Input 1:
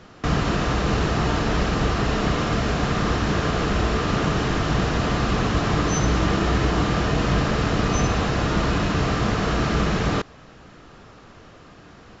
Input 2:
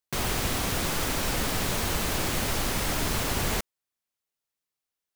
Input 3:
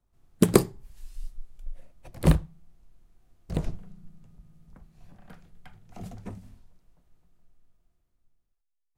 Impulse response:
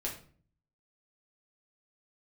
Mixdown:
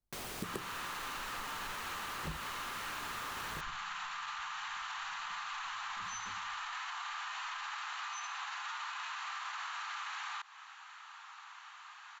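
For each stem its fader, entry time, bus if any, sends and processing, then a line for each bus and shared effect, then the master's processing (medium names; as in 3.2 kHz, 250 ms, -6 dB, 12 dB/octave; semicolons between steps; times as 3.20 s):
-0.5 dB, 0.20 s, no send, steep high-pass 840 Hz 72 dB/octave; peaking EQ 5.2 kHz -9.5 dB 0.24 oct; peak limiter -25 dBFS, peak gain reduction 8.5 dB
-10.5 dB, 0.00 s, no send, bass shelf 160 Hz -10.5 dB
-13.0 dB, 0.00 s, no send, none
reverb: none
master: compression 3:1, threshold -41 dBFS, peak gain reduction 13.5 dB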